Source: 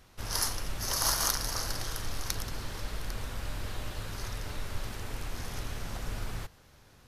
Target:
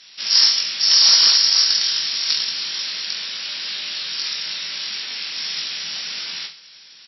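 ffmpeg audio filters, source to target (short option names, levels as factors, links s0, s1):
-filter_complex "[0:a]aecho=1:1:20|43|69.45|99.87|134.8:0.631|0.398|0.251|0.158|0.1,acrossover=split=2000[s0][s1];[s1]aeval=exprs='0.299*sin(PI/2*3.98*val(0)/0.299)':c=same[s2];[s0][s2]amix=inputs=2:normalize=0,crystalizer=i=8:c=0,afftfilt=real='re*between(b*sr/4096,140,5700)':imag='im*between(b*sr/4096,140,5700)':win_size=4096:overlap=0.75,volume=0.376"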